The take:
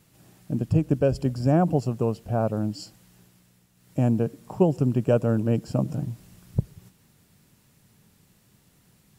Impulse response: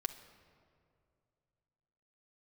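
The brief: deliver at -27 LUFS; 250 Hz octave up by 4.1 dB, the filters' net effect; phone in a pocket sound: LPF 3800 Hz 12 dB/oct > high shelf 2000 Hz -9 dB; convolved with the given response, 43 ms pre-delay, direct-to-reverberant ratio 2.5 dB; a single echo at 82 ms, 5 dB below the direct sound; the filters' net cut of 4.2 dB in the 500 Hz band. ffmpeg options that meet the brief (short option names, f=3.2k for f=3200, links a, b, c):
-filter_complex "[0:a]equalizer=f=250:t=o:g=7,equalizer=f=500:t=o:g=-7,aecho=1:1:82:0.562,asplit=2[a][b];[1:a]atrim=start_sample=2205,adelay=43[c];[b][c]afir=irnorm=-1:irlink=0,volume=-2.5dB[d];[a][d]amix=inputs=2:normalize=0,lowpass=3.8k,highshelf=f=2k:g=-9,volume=-6.5dB"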